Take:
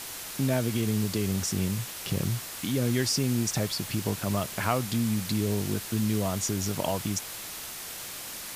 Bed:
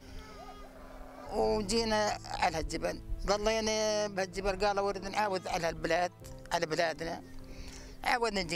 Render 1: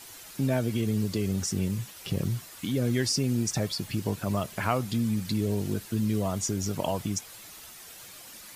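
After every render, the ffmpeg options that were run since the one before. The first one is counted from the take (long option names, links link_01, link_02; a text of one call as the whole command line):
ffmpeg -i in.wav -af "afftdn=noise_reduction=10:noise_floor=-39" out.wav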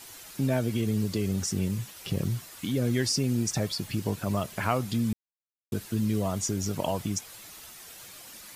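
ffmpeg -i in.wav -filter_complex "[0:a]asplit=3[link_01][link_02][link_03];[link_01]atrim=end=5.13,asetpts=PTS-STARTPTS,afade=type=out:start_time=5.126:duration=0.004:curve=hsin[link_04];[link_02]atrim=start=5.13:end=5.72,asetpts=PTS-STARTPTS,volume=0[link_05];[link_03]atrim=start=5.72,asetpts=PTS-STARTPTS,afade=type=in:duration=0.004:curve=hsin[link_06];[link_04][link_05][link_06]concat=n=3:v=0:a=1" out.wav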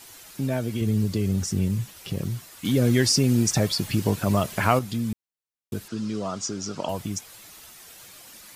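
ffmpeg -i in.wav -filter_complex "[0:a]asettb=1/sr,asplit=3[link_01][link_02][link_03];[link_01]atrim=end=0.814[link_04];[link_02]atrim=start=0.81:end=2,asetpts=PTS-STARTPTS,afade=type=in:duration=0.004:curve=qsin,afade=type=out:start_time=1.186:duration=0.004:curve=qsin,lowshelf=frequency=200:gain=7.5[link_05];[link_03]atrim=start=1.996[link_06];[link_04][link_05]acrossfade=duration=0.004:curve1=hsin:curve2=qsin[link_07];[link_07][link_06]acrossfade=duration=0.004:curve1=qsin:curve2=hsin,asettb=1/sr,asplit=3[link_08][link_09][link_10];[link_08]atrim=end=5.884[link_11];[link_09]atrim=start=5.88:end=6.89,asetpts=PTS-STARTPTS,afade=type=in:duration=0.004:curve=qsin,afade=type=out:start_time=1.006:duration=0.004:curve=qsin,highpass=170,equalizer=frequency=1300:width_type=q:width=4:gain=8,equalizer=frequency=2000:width_type=q:width=4:gain=-4,equalizer=frequency=5000:width_type=q:width=4:gain=6,lowpass=frequency=7400:width=0.5412,lowpass=frequency=7400:width=1.3066[link_12];[link_10]atrim=start=6.886[link_13];[link_11][link_12]acrossfade=duration=0.004:curve1=hsin:curve2=qsin[link_14];[link_14][link_13]acrossfade=duration=0.004:curve1=qsin:curve2=hsin,asplit=3[link_15][link_16][link_17];[link_15]atrim=end=2.652[link_18];[link_16]atrim=start=2.648:end=4.792,asetpts=PTS-STARTPTS,volume=6.5dB[link_19];[link_17]atrim=start=4.788[link_20];[link_18][link_19]acrossfade=duration=0.004:curve1=hsin:curve2=hsin[link_21];[link_21][link_20]acrossfade=duration=0.004:curve1=hsin:curve2=hsin" out.wav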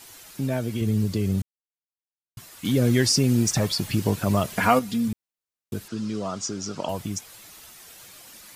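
ffmpeg -i in.wav -filter_complex "[0:a]asettb=1/sr,asplit=3[link_01][link_02][link_03];[link_01]atrim=end=3.444[link_04];[link_02]atrim=start=3.44:end=3.93,asetpts=PTS-STARTPTS,afade=type=in:duration=0.004:curve=qsin,afade=type=out:start_time=0.486:duration=0.004:curve=qsin,asoftclip=type=hard:threshold=-15.5dB[link_05];[link_03]atrim=start=3.926[link_06];[link_04][link_05]acrossfade=duration=0.004:curve1=hsin:curve2=qsin[link_07];[link_07][link_06]acrossfade=duration=0.004:curve1=qsin:curve2=hsin,asettb=1/sr,asplit=3[link_08][link_09][link_10];[link_08]atrim=end=4.574[link_11];[link_09]atrim=start=4.57:end=5.08,asetpts=PTS-STARTPTS,afade=type=in:duration=0.004:curve=qsin,afade=type=out:start_time=0.506:duration=0.004:curve=qsin,aecho=1:1:4.2:0.7,atrim=end_sample=22491[link_12];[link_10]atrim=start=5.076[link_13];[link_11][link_12]acrossfade=duration=0.004:curve1=hsin:curve2=qsin[link_14];[link_14][link_13]acrossfade=duration=0.004:curve1=qsin:curve2=hsin,asplit=3[link_15][link_16][link_17];[link_15]atrim=end=1.42,asetpts=PTS-STARTPTS,afade=type=out:start_time=1.416:duration=0.004:curve=hsin[link_18];[link_16]atrim=start=1.42:end=2.37,asetpts=PTS-STARTPTS,volume=0[link_19];[link_17]atrim=start=2.37,asetpts=PTS-STARTPTS,afade=type=in:duration=0.004:curve=hsin[link_20];[link_18][link_19][link_20]concat=n=3:v=0:a=1" out.wav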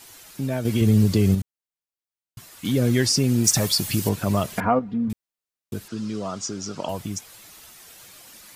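ffmpeg -i in.wav -filter_complex "[0:a]asettb=1/sr,asplit=3[link_01][link_02][link_03];[link_01]atrim=end=0.654[link_04];[link_02]atrim=start=0.65:end=1.35,asetpts=PTS-STARTPTS,afade=type=in:duration=0.004:curve=qsin,afade=type=out:start_time=0.696:duration=0.004:curve=qsin,acontrast=66[link_05];[link_03]atrim=start=1.346[link_06];[link_04][link_05]acrossfade=duration=0.004:curve1=hsin:curve2=qsin[link_07];[link_07][link_06]acrossfade=duration=0.004:curve1=qsin:curve2=hsin,asettb=1/sr,asplit=3[link_08][link_09][link_10];[link_08]atrim=end=3.444[link_11];[link_09]atrim=start=3.44:end=4.09,asetpts=PTS-STARTPTS,afade=type=in:duration=0.004:curve=qsin,afade=type=out:start_time=0.646:duration=0.004:curve=qsin,highshelf=frequency=5000:gain=11[link_12];[link_10]atrim=start=4.086[link_13];[link_11][link_12]acrossfade=duration=0.004:curve1=hsin:curve2=qsin[link_14];[link_14][link_13]acrossfade=duration=0.004:curve1=qsin:curve2=hsin,asettb=1/sr,asplit=3[link_15][link_16][link_17];[link_15]atrim=end=4.604[link_18];[link_16]atrim=start=4.6:end=5.1,asetpts=PTS-STARTPTS,afade=type=in:duration=0.004:curve=qsin,afade=type=out:start_time=0.496:duration=0.004:curve=qsin,lowpass=1100[link_19];[link_17]atrim=start=5.096[link_20];[link_18][link_19]acrossfade=duration=0.004:curve1=hsin:curve2=qsin[link_21];[link_21][link_20]acrossfade=duration=0.004:curve1=qsin:curve2=hsin" out.wav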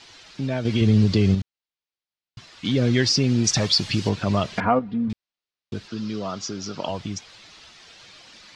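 ffmpeg -i in.wav -af "lowpass=frequency=4700:width=0.5412,lowpass=frequency=4700:width=1.3066,highshelf=frequency=3100:gain=9" out.wav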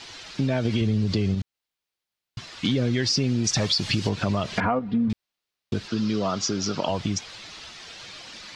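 ffmpeg -i in.wav -filter_complex "[0:a]asplit=2[link_01][link_02];[link_02]alimiter=limit=-18dB:level=0:latency=1,volume=-0.5dB[link_03];[link_01][link_03]amix=inputs=2:normalize=0,acompressor=threshold=-20dB:ratio=6" out.wav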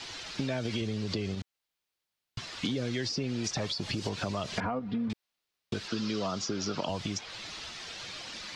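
ffmpeg -i in.wav -filter_complex "[0:a]acrossover=split=340|980|4500[link_01][link_02][link_03][link_04];[link_01]acompressor=threshold=-36dB:ratio=4[link_05];[link_02]acompressor=threshold=-36dB:ratio=4[link_06];[link_03]acompressor=threshold=-40dB:ratio=4[link_07];[link_04]acompressor=threshold=-41dB:ratio=4[link_08];[link_05][link_06][link_07][link_08]amix=inputs=4:normalize=0" out.wav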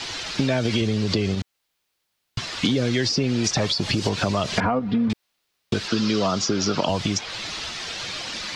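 ffmpeg -i in.wav -af "volume=10.5dB" out.wav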